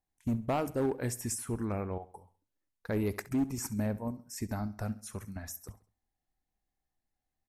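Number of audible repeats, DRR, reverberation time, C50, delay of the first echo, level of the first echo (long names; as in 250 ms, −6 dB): 3, no reverb audible, no reverb audible, no reverb audible, 67 ms, −17.5 dB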